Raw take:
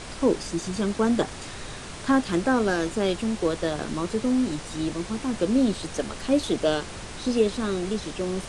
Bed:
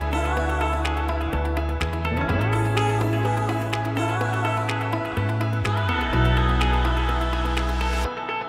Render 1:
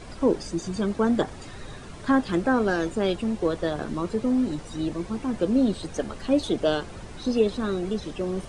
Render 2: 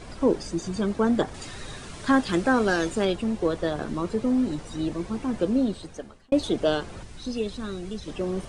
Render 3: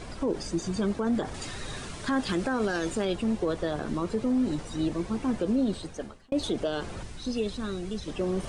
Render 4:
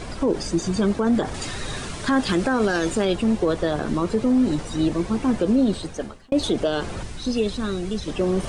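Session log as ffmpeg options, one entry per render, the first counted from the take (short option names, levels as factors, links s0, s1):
-af "afftdn=nr=10:nf=-38"
-filter_complex "[0:a]asettb=1/sr,asplit=3[s0][s1][s2];[s0]atrim=end=1.344[s3];[s1]atrim=start=1.34:end=3.05,asetpts=PTS-STARTPTS,afade=t=in:d=0.004:c=qsin,afade=t=out:st=1.706:d=0.004:c=qsin,highshelf=f=2100:g=7.5[s4];[s2]atrim=start=3.046[s5];[s3][s4]acrossfade=d=0.004:c1=hsin:c2=qsin[s6];[s6][s5]acrossfade=d=0.004:c1=qsin:c2=hsin,asettb=1/sr,asplit=3[s7][s8][s9];[s7]atrim=end=7.034[s10];[s8]atrim=start=7.03:end=8.08,asetpts=PTS-STARTPTS,afade=t=in:d=0.004:c=qsin,afade=t=out:st=1.046:d=0.004:c=qsin,equalizer=f=580:w=0.31:g=-8.5[s11];[s9]atrim=start=8.076[s12];[s10][s11]acrossfade=d=0.004:c1=hsin:c2=qsin[s13];[s13][s12]acrossfade=d=0.004:c1=qsin:c2=hsin,asplit=2[s14][s15];[s14]atrim=end=6.32,asetpts=PTS-STARTPTS,afade=t=out:st=5.41:d=0.91[s16];[s15]atrim=start=6.32,asetpts=PTS-STARTPTS,afade=t=in:d=0.004:c=hsin[s17];[s16][s17]concat=n=2:v=0:a=1"
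-af "alimiter=limit=0.112:level=0:latency=1:release=52,areverse,acompressor=mode=upward:threshold=0.0251:ratio=2.5,areverse"
-af "volume=2.24"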